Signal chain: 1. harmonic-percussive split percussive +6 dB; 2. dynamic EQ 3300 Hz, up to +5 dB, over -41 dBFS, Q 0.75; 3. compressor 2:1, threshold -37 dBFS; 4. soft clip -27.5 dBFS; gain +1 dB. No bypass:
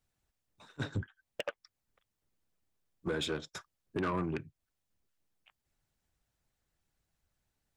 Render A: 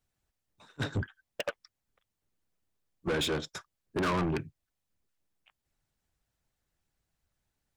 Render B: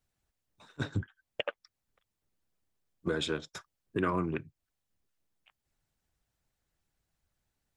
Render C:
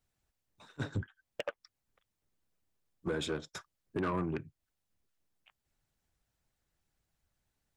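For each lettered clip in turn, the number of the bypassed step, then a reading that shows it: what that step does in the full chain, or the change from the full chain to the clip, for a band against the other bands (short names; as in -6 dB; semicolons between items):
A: 3, mean gain reduction 8.0 dB; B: 4, distortion -13 dB; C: 2, 4 kHz band -3.0 dB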